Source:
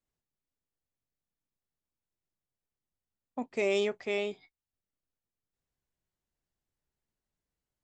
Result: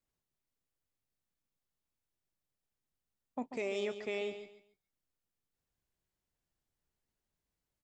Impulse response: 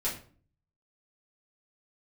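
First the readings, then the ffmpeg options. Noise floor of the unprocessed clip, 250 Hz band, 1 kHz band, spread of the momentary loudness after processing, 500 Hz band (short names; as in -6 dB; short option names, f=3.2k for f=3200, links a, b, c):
under -85 dBFS, -5.0 dB, -4.0 dB, 12 LU, -6.5 dB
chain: -af "alimiter=level_in=2.5dB:limit=-24dB:level=0:latency=1:release=422,volume=-2.5dB,aecho=1:1:140|280|420:0.316|0.0822|0.0214"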